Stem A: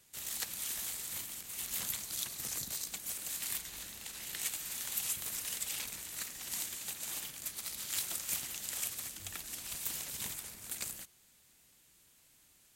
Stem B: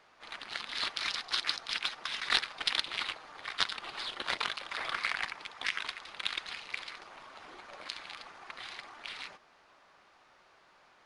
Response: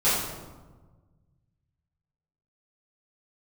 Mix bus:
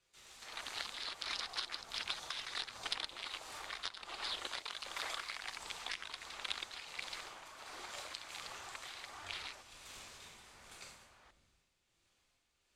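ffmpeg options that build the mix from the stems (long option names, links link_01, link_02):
-filter_complex "[0:a]lowpass=5000,volume=-12dB,asplit=2[link_01][link_02];[link_02]volume=-8.5dB[link_03];[1:a]adelay=250,volume=1dB[link_04];[2:a]atrim=start_sample=2205[link_05];[link_03][link_05]afir=irnorm=-1:irlink=0[link_06];[link_01][link_04][link_06]amix=inputs=3:normalize=0,equalizer=frequency=160:width_type=o:width=1.5:gain=-9.5,acrossover=split=1100|3200[link_07][link_08][link_09];[link_07]acompressor=threshold=-45dB:ratio=4[link_10];[link_08]acompressor=threshold=-47dB:ratio=4[link_11];[link_09]acompressor=threshold=-38dB:ratio=4[link_12];[link_10][link_11][link_12]amix=inputs=3:normalize=0,tremolo=f=1.4:d=0.43"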